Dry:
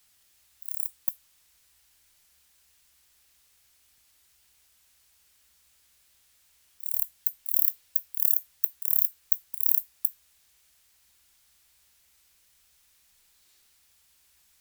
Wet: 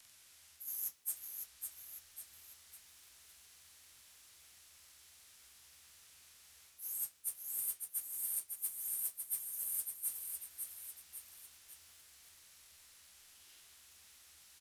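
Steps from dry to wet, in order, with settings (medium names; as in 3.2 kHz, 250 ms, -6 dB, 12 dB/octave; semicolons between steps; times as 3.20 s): frequency axis rescaled in octaves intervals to 89%; reverse; compression 12:1, threshold -41 dBFS, peak gain reduction 20 dB; reverse; modulation noise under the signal 19 dB; delay 1099 ms -13 dB; bit-crushed delay 554 ms, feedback 35%, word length 11-bit, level -5 dB; trim +4 dB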